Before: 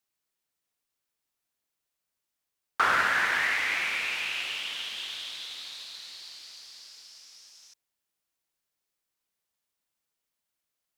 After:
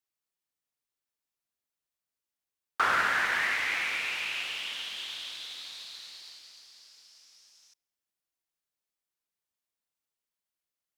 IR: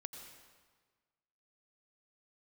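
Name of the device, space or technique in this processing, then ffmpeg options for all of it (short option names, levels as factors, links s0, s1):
keyed gated reverb: -filter_complex "[0:a]asplit=3[s0][s1][s2];[1:a]atrim=start_sample=2205[s3];[s1][s3]afir=irnorm=-1:irlink=0[s4];[s2]apad=whole_len=483801[s5];[s4][s5]sidechaingate=range=0.0447:threshold=0.00631:ratio=16:detection=peak,volume=1.33[s6];[s0][s6]amix=inputs=2:normalize=0,volume=0.447"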